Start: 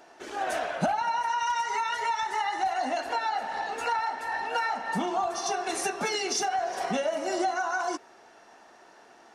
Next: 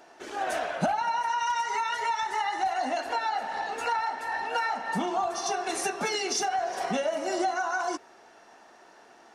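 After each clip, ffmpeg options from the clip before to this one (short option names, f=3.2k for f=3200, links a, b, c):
-af "bandreject=f=60:t=h:w=6,bandreject=f=120:t=h:w=6"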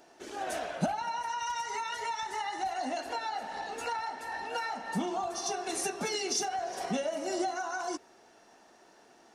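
-af "equalizer=f=1.3k:t=o:w=2.8:g=-7.5"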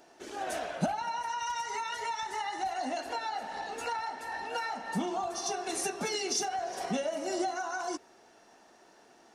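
-af anull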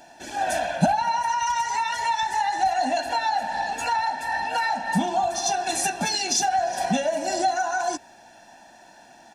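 -af "bandreject=f=1.1k:w=5.7,aecho=1:1:1.2:0.8,volume=7.5dB"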